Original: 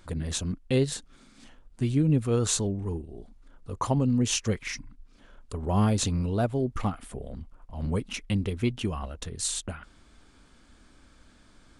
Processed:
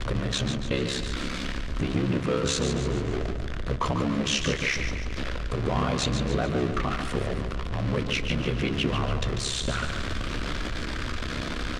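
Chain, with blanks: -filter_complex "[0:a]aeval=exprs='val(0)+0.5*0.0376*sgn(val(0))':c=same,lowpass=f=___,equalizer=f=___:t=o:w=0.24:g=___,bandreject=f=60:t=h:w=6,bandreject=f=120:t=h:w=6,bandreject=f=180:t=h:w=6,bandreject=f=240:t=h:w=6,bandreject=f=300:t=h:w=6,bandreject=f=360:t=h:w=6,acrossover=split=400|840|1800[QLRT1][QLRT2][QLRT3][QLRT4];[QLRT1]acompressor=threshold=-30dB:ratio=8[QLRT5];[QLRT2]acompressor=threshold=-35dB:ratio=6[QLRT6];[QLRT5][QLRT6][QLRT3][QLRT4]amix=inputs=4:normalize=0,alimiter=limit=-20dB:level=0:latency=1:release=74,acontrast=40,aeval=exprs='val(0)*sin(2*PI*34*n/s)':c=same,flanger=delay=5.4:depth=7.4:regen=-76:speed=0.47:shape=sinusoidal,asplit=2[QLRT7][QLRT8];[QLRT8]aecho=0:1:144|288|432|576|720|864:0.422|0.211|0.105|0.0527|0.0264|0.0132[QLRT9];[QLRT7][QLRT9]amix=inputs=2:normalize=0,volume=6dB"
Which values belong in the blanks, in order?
3.9k, 840, -10.5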